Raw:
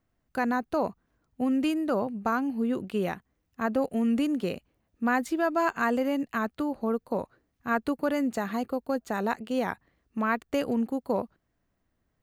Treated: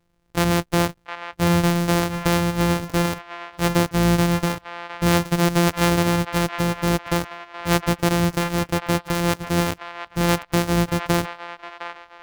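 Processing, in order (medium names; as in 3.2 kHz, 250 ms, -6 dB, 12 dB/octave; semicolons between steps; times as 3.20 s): sorted samples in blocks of 256 samples; feedback echo behind a band-pass 711 ms, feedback 34%, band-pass 1.5 kHz, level -7 dB; trim +7.5 dB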